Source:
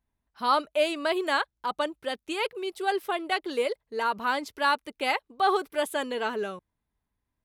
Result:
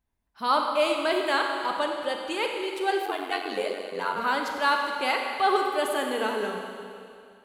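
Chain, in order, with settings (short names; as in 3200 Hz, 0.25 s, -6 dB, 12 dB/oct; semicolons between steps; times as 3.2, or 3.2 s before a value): Schroeder reverb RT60 2.4 s, combs from 32 ms, DRR 2 dB; 3.05–4.17 ring modulator 46 Hz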